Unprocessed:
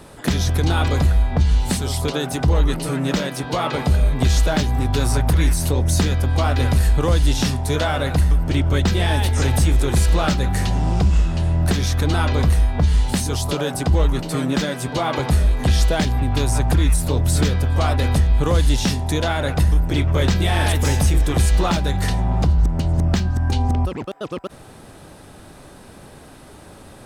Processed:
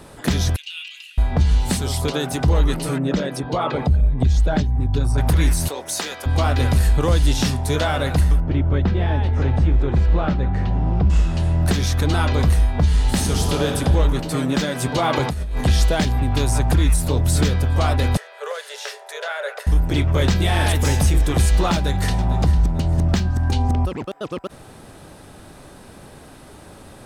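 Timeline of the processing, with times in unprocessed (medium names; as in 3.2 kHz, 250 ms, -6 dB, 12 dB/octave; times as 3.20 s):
0.56–1.18 s: ladder high-pass 2.7 kHz, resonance 90%
2.98–5.18 s: resonances exaggerated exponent 1.5
5.68–6.26 s: high-pass 570 Hz
8.40–11.10 s: tape spacing loss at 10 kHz 36 dB
12.91–13.76 s: reverb throw, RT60 2.3 s, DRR 2 dB
14.75–15.61 s: compressor with a negative ratio -21 dBFS
18.17–19.67 s: rippled Chebyshev high-pass 410 Hz, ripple 9 dB
21.73–22.26 s: echo throw 450 ms, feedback 35%, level -13.5 dB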